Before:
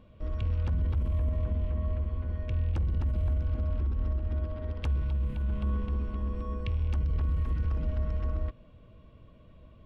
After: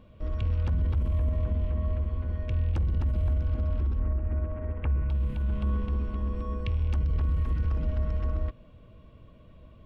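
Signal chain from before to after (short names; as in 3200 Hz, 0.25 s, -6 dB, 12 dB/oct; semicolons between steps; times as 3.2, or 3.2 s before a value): 3.99–5.1 steep low-pass 2500 Hz 36 dB/oct; gain +2 dB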